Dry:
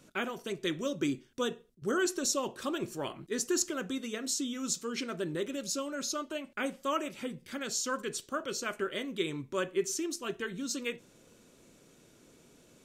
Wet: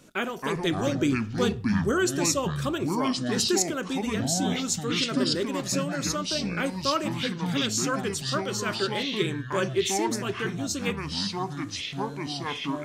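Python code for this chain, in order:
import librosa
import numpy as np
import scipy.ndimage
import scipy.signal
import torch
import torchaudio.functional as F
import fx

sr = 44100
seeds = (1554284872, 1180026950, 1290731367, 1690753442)

y = fx.echo_pitch(x, sr, ms=209, semitones=-6, count=2, db_per_echo=-3.0)
y = fx.low_shelf(y, sr, hz=110.0, db=11.5, at=(0.56, 1.92))
y = y * 10.0 ** (5.0 / 20.0)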